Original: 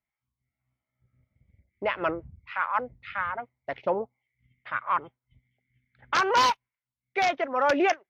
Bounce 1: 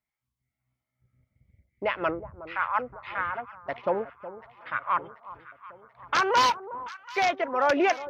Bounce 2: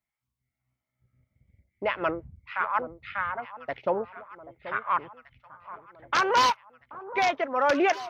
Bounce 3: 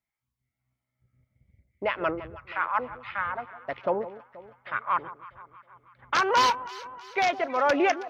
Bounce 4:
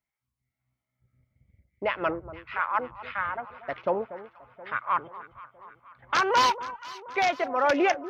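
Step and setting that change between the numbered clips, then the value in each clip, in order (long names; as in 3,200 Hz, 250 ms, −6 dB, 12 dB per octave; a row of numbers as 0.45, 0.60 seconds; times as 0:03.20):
delay that swaps between a low-pass and a high-pass, delay time: 367, 782, 160, 239 milliseconds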